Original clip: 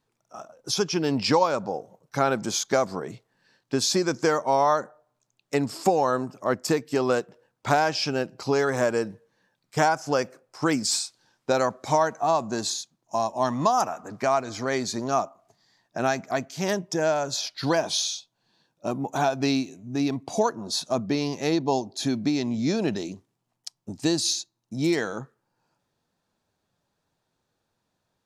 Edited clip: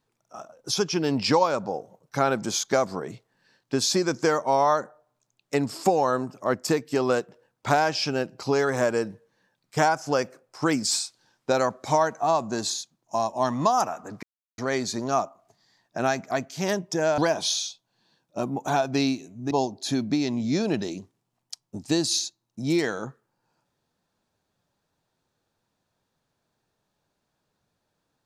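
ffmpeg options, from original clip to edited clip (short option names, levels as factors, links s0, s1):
-filter_complex "[0:a]asplit=5[s0][s1][s2][s3][s4];[s0]atrim=end=14.23,asetpts=PTS-STARTPTS,afade=t=out:st=14.226:d=0.004:c=hsin[s5];[s1]atrim=start=14.23:end=14.58,asetpts=PTS-STARTPTS,volume=0[s6];[s2]atrim=start=14.58:end=17.182,asetpts=PTS-STARTPTS,afade=t=in:d=0.004:c=hsin[s7];[s3]atrim=start=17.658:end=19.992[s8];[s4]atrim=start=21.648[s9];[s5][s6][s7]concat=n=3:v=0:a=1[s10];[s10][s8]acrossfade=d=0.004:c1=hsin:c2=hsin[s11];[s11][s9]acrossfade=d=0.004:c1=hsin:c2=hsin"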